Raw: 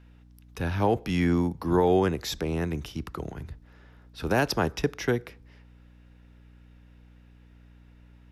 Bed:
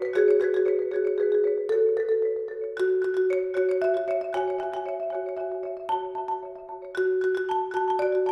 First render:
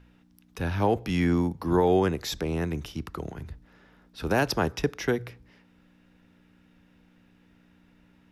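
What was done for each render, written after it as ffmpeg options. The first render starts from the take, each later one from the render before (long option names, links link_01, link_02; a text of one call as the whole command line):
ffmpeg -i in.wav -af "bandreject=frequency=60:width_type=h:width=4,bandreject=frequency=120:width_type=h:width=4" out.wav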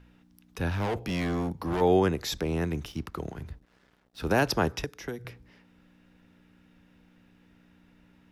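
ffmpeg -i in.wav -filter_complex "[0:a]asplit=3[link_01][link_02][link_03];[link_01]afade=type=out:start_time=0.69:duration=0.02[link_04];[link_02]asoftclip=type=hard:threshold=-26.5dB,afade=type=in:start_time=0.69:duration=0.02,afade=type=out:start_time=1.8:duration=0.02[link_05];[link_03]afade=type=in:start_time=1.8:duration=0.02[link_06];[link_04][link_05][link_06]amix=inputs=3:normalize=0,asettb=1/sr,asplit=3[link_07][link_08][link_09];[link_07]atrim=end=2.374[link_10];[link_08]atrim=start=2.37:end=4.3,asetpts=PTS-STARTPTS,afade=type=in:duration=0.004:curve=qsin,afade=type=out:start_time=1.926:duration=0.004:curve=qsin,aeval=exprs='sgn(val(0))*max(abs(val(0))-0.00133,0)':channel_layout=same[link_11];[link_09]atrim=start=4.296[link_12];[link_10][link_11]acrossfade=duration=0.004:curve1=hsin:curve2=qsin[link_13];[link_13][link_12]acrossfade=duration=0.004:curve1=qsin:curve2=hsin,asettb=1/sr,asplit=3[link_14][link_15][link_16];[link_14]atrim=end=4.844[link_17];[link_15]atrim=start=4.84:end=5.25,asetpts=PTS-STARTPTS,afade=type=in:duration=0.004:curve=qsin,afade=type=out:start_time=0.406:duration=0.004:curve=qsin,acrossover=split=270|1600|5300[link_18][link_19][link_20][link_21];[link_18]acompressor=threshold=-42dB:ratio=3[link_22];[link_19]acompressor=threshold=-40dB:ratio=3[link_23];[link_20]acompressor=threshold=-53dB:ratio=3[link_24];[link_21]acompressor=threshold=-51dB:ratio=3[link_25];[link_22][link_23][link_24][link_25]amix=inputs=4:normalize=0[link_26];[link_16]atrim=start=5.246[link_27];[link_17][link_26]acrossfade=duration=0.004:curve1=hsin:curve2=qsin[link_28];[link_28][link_27]acrossfade=duration=0.004:curve1=qsin:curve2=hsin" out.wav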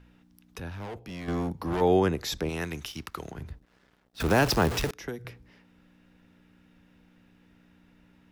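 ffmpeg -i in.wav -filter_complex "[0:a]asettb=1/sr,asplit=3[link_01][link_02][link_03];[link_01]atrim=end=2.494[link_04];[link_02]atrim=start=2.49:end=3.31,asetpts=PTS-STARTPTS,afade=type=in:duration=0.004:curve=qsin,afade=type=out:start_time=0.816:duration=0.004:curve=qsin,tiltshelf=frequency=940:gain=-6.5[link_05];[link_03]atrim=start=3.306[link_06];[link_04][link_05]acrossfade=duration=0.004:curve1=hsin:curve2=qsin[link_07];[link_07][link_06]acrossfade=duration=0.004:curve1=qsin:curve2=hsin,asettb=1/sr,asplit=3[link_08][link_09][link_10];[link_08]atrim=end=4.204[link_11];[link_09]atrim=start=4.2:end=4.91,asetpts=PTS-STARTPTS,afade=type=in:duration=0.004:curve=qsin,afade=type=out:start_time=0.706:duration=0.004:curve=qsin,aeval=exprs='val(0)+0.5*0.0447*sgn(val(0))':channel_layout=same[link_12];[link_10]atrim=start=4.906[link_13];[link_11][link_12]acrossfade=duration=0.004:curve1=hsin:curve2=qsin[link_14];[link_14][link_13]acrossfade=duration=0.004:curve1=qsin:curve2=hsin,asplit=3[link_15][link_16][link_17];[link_15]atrim=end=0.602[link_18];[link_16]atrim=start=0.598:end=1.282,asetpts=PTS-STARTPTS,volume=-9dB[link_19];[link_17]atrim=start=1.278[link_20];[link_18][link_19]acrossfade=duration=0.004:curve1=hsin:curve2=hsin[link_21];[link_21][link_20]acrossfade=duration=0.004:curve1=hsin:curve2=hsin" out.wav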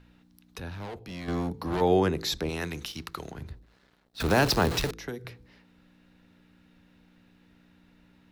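ffmpeg -i in.wav -af "equalizer=frequency=4100:width_type=o:width=0.27:gain=7,bandreject=frequency=54.88:width_type=h:width=4,bandreject=frequency=109.76:width_type=h:width=4,bandreject=frequency=164.64:width_type=h:width=4,bandreject=frequency=219.52:width_type=h:width=4,bandreject=frequency=274.4:width_type=h:width=4,bandreject=frequency=329.28:width_type=h:width=4,bandreject=frequency=384.16:width_type=h:width=4,bandreject=frequency=439.04:width_type=h:width=4,bandreject=frequency=493.92:width_type=h:width=4" out.wav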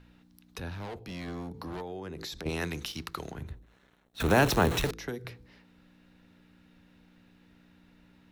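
ffmpeg -i in.wav -filter_complex "[0:a]asettb=1/sr,asplit=3[link_01][link_02][link_03];[link_01]atrim=end=0.734[link_04];[link_02]atrim=start=0.73:end=2.46,asetpts=PTS-STARTPTS,afade=type=in:duration=0.004:curve=qsin,afade=type=out:start_time=1.726:duration=0.004:curve=qsin,acompressor=threshold=-36dB:ratio=8:attack=3.2:release=140:knee=1:detection=peak[link_05];[link_03]atrim=start=2.456[link_06];[link_04][link_05]acrossfade=duration=0.004:curve1=hsin:curve2=qsin[link_07];[link_07][link_06]acrossfade=duration=0.004:curve1=qsin:curve2=hsin,asettb=1/sr,asplit=3[link_08][link_09][link_10];[link_08]atrim=end=3.354[link_11];[link_09]atrim=start=3.35:end=4.86,asetpts=PTS-STARTPTS,afade=type=in:duration=0.004:curve=qsin,afade=type=out:start_time=1.506:duration=0.004:curve=qsin,equalizer=frequency=4800:width=5.6:gain=-14[link_12];[link_10]atrim=start=4.856[link_13];[link_11][link_12]acrossfade=duration=0.004:curve1=hsin:curve2=qsin[link_14];[link_14][link_13]acrossfade=duration=0.004:curve1=qsin:curve2=hsin" out.wav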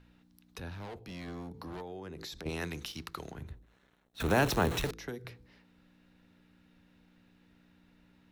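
ffmpeg -i in.wav -af "volume=-4dB" out.wav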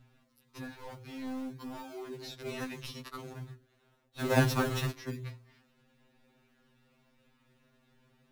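ffmpeg -i in.wav -filter_complex "[0:a]asplit=2[link_01][link_02];[link_02]acrusher=samples=40:mix=1:aa=0.000001:lfo=1:lforange=40:lforate=0.44,volume=-4dB[link_03];[link_01][link_03]amix=inputs=2:normalize=0,afftfilt=real='re*2.45*eq(mod(b,6),0)':imag='im*2.45*eq(mod(b,6),0)':win_size=2048:overlap=0.75" out.wav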